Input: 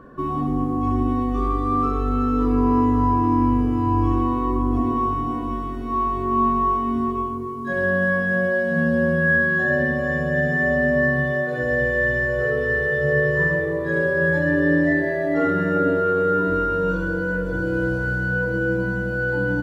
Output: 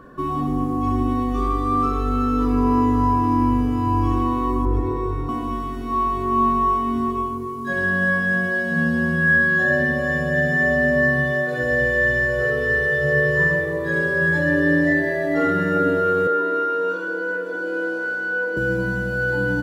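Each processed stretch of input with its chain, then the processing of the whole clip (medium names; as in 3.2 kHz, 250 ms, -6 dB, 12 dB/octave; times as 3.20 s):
4.65–5.29 s: treble shelf 2.6 kHz -11.5 dB + comb 2.2 ms, depth 85%
16.27–18.57 s: high-pass 310 Hz 24 dB/octave + treble shelf 4.5 kHz -11 dB
whole clip: treble shelf 2.6 kHz +8.5 dB; de-hum 110.9 Hz, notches 6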